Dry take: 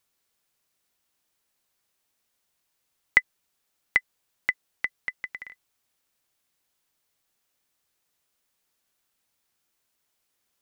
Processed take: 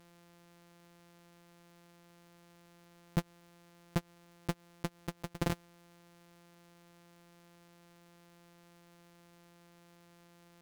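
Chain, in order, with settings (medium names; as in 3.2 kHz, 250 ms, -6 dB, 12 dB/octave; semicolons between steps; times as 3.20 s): sorted samples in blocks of 256 samples; slow attack 138 ms; sine folder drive 8 dB, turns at -24.5 dBFS; trim +3 dB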